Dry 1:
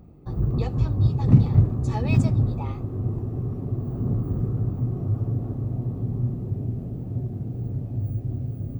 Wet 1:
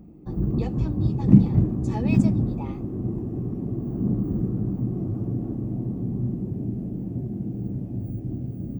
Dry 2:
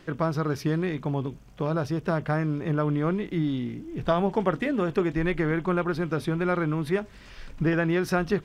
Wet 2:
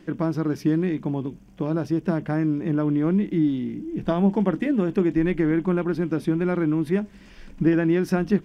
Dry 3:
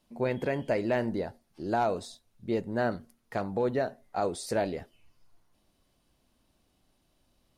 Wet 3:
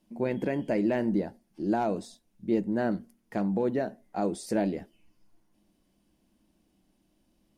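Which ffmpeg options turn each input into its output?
-af "equalizer=f=100:t=o:w=0.33:g=-6,equalizer=f=200:t=o:w=0.33:g=12,equalizer=f=315:t=o:w=0.33:g=10,equalizer=f=1.25k:t=o:w=0.33:g=-5,equalizer=f=4k:t=o:w=0.33:g=-5,volume=-2dB"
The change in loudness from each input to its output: -0.5, +3.5, +1.5 LU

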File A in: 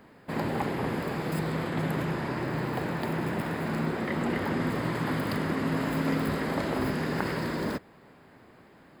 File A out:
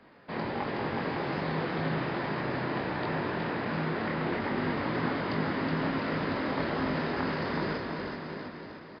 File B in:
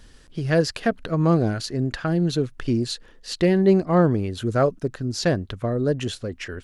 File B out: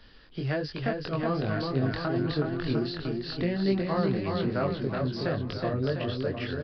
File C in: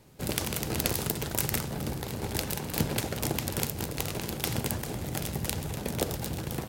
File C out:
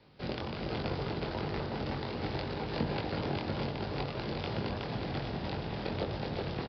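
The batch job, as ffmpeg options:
-filter_complex "[0:a]lowshelf=f=370:g=-6,acrossover=split=200|1300[a][b][c];[a]acompressor=threshold=-31dB:ratio=4[d];[b]acompressor=threshold=-30dB:ratio=4[e];[c]acompressor=threshold=-39dB:ratio=4[f];[d][e][f]amix=inputs=3:normalize=0,flanger=delay=19.5:depth=3.9:speed=1.3,asplit=2[g][h];[h]aecho=0:1:370|703|1003|1272|1515:0.631|0.398|0.251|0.158|0.1[i];[g][i]amix=inputs=2:normalize=0,aresample=11025,aresample=44100,volume=3dB"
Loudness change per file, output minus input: -1.5, -6.5, -4.5 LU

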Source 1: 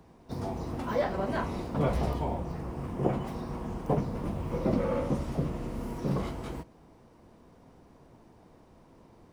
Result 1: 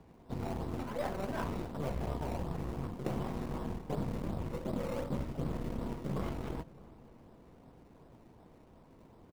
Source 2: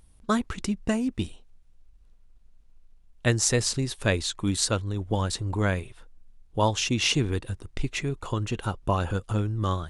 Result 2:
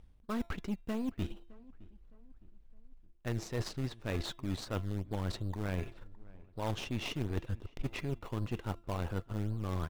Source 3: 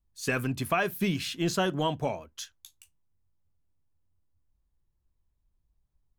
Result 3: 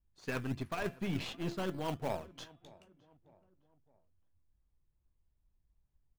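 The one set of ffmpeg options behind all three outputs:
-filter_complex "[0:a]lowpass=3.4k,bandreject=f=340.9:t=h:w=4,bandreject=f=681.8:t=h:w=4,bandreject=f=1.0227k:t=h:w=4,bandreject=f=1.3636k:t=h:w=4,bandreject=f=1.7045k:t=h:w=4,bandreject=f=2.0454k:t=h:w=4,bandreject=f=2.3863k:t=h:w=4,bandreject=f=2.7272k:t=h:w=4,bandreject=f=3.0681k:t=h:w=4,bandreject=f=3.409k:t=h:w=4,bandreject=f=3.7499k:t=h:w=4,areverse,acompressor=threshold=-32dB:ratio=16,areverse,aeval=exprs='0.075*(cos(1*acos(clip(val(0)/0.075,-1,1)))-cos(1*PI/2))+0.0106*(cos(3*acos(clip(val(0)/0.075,-1,1)))-cos(3*PI/2))+0.00335*(cos(8*acos(clip(val(0)/0.075,-1,1)))-cos(8*PI/2))':c=same,asplit=2[a][b];[b]acrusher=samples=19:mix=1:aa=0.000001:lfo=1:lforange=19:lforate=2.7,volume=-6.5dB[c];[a][c]amix=inputs=2:normalize=0,asplit=2[d][e];[e]adelay=613,lowpass=f=1.7k:p=1,volume=-21.5dB,asplit=2[f][g];[g]adelay=613,lowpass=f=1.7k:p=1,volume=0.46,asplit=2[h][i];[i]adelay=613,lowpass=f=1.7k:p=1,volume=0.46[j];[d][f][h][j]amix=inputs=4:normalize=0"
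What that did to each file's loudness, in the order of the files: -6.0, -11.0, -9.0 LU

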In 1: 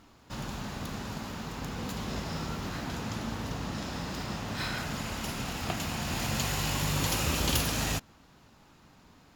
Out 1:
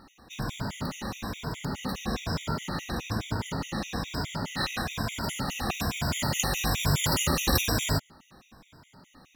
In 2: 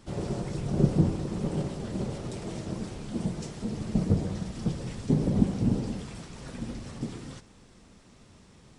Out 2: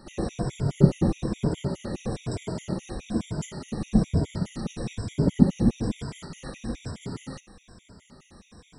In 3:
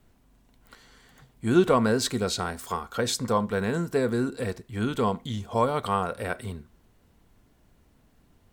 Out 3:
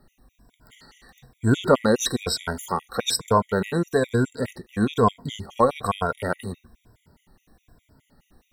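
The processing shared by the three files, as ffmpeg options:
-af "afftfilt=real='re*pow(10,10/40*sin(2*PI*(1.7*log(max(b,1)*sr/1024/100)/log(2)-(-1.1)*(pts-256)/sr)))':imag='im*pow(10,10/40*sin(2*PI*(1.7*log(max(b,1)*sr/1024/100)/log(2)-(-1.1)*(pts-256)/sr)))':win_size=1024:overlap=0.75,afftfilt=real='re*gt(sin(2*PI*4.8*pts/sr)*(1-2*mod(floor(b*sr/1024/1900),2)),0)':imag='im*gt(sin(2*PI*4.8*pts/sr)*(1-2*mod(floor(b*sr/1024/1900),2)),0)':win_size=1024:overlap=0.75,volume=5dB"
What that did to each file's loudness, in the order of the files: +3.0, +2.5, +3.0 LU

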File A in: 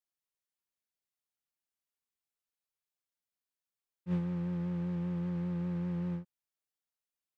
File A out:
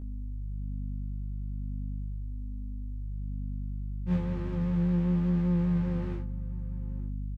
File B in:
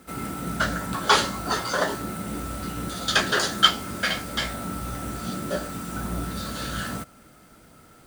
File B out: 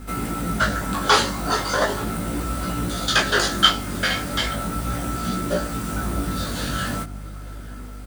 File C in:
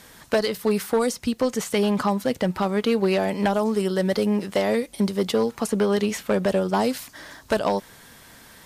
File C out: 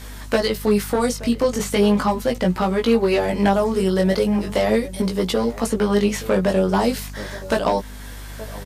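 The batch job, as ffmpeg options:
-filter_complex "[0:a]asplit=2[a][b];[b]acompressor=threshold=-35dB:ratio=6,volume=-1dB[c];[a][c]amix=inputs=2:normalize=0,asplit=2[d][e];[e]adelay=874.6,volume=-17dB,highshelf=f=4k:g=-19.7[f];[d][f]amix=inputs=2:normalize=0,aeval=exprs='val(0)+0.0141*(sin(2*PI*50*n/s)+sin(2*PI*2*50*n/s)/2+sin(2*PI*3*50*n/s)/3+sin(2*PI*4*50*n/s)/4+sin(2*PI*5*50*n/s)/5)':c=same,flanger=delay=16.5:depth=5:speed=0.38,volume=4.5dB"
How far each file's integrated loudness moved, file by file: +3.0, +3.5, +3.5 LU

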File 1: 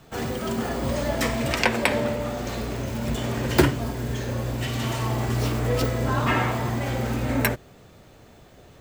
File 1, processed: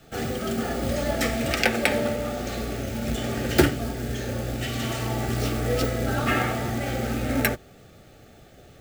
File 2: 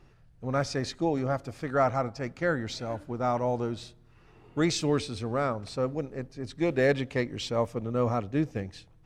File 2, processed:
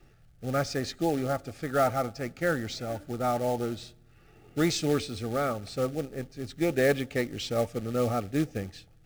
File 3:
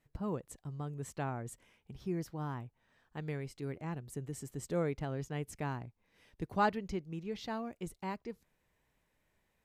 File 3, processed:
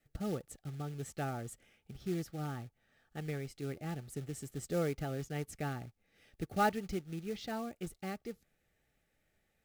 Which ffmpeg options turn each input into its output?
-af "adynamicequalizer=threshold=0.00562:dfrequency=130:dqfactor=5:tfrequency=130:tqfactor=5:attack=5:release=100:ratio=0.375:range=3:mode=cutabove:tftype=bell,acrusher=bits=4:mode=log:mix=0:aa=0.000001,asuperstop=centerf=1000:order=20:qfactor=4.5"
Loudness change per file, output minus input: -0.5, 0.0, 0.0 LU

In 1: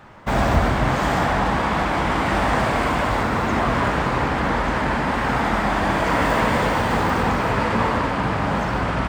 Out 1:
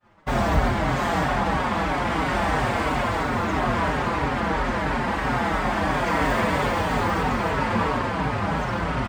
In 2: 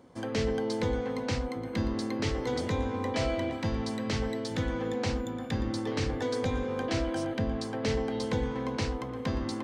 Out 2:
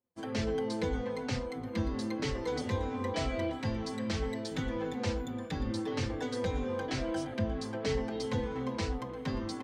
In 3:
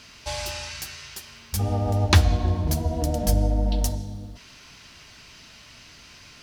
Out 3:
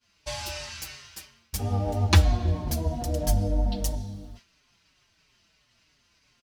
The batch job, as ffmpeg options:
-filter_complex "[0:a]agate=range=-33dB:threshold=-37dB:ratio=3:detection=peak,asplit=2[a][b];[b]adelay=5.1,afreqshift=-3[c];[a][c]amix=inputs=2:normalize=1"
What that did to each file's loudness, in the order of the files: -3.0, -3.0, -2.5 LU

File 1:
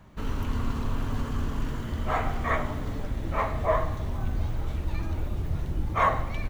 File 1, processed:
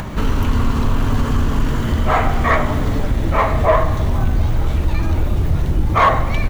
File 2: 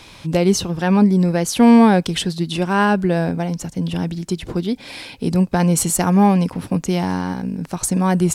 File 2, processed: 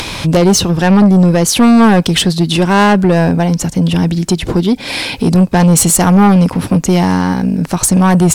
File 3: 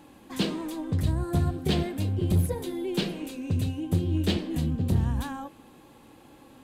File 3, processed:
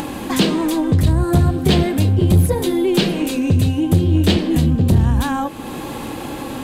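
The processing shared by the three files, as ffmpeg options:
-filter_complex "[0:a]asplit=2[a][b];[b]acompressor=mode=upward:threshold=-19dB:ratio=2.5,volume=2dB[c];[a][c]amix=inputs=2:normalize=0,asoftclip=type=tanh:threshold=-8.5dB,volume=4.5dB"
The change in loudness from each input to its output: +12.0, +7.0, +11.5 LU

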